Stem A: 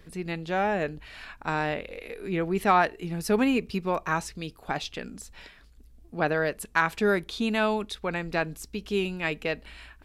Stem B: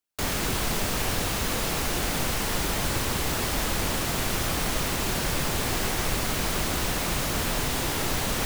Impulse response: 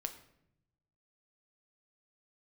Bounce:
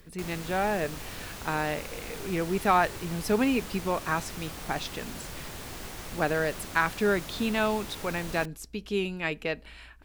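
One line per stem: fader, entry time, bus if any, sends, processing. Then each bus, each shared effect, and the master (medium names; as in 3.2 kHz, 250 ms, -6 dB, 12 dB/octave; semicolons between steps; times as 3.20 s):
-2.0 dB, 0.00 s, send -23.5 dB, none
-13.5 dB, 0.00 s, no send, upward compressor, threshold -32 dBFS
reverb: on, RT60 0.75 s, pre-delay 7 ms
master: none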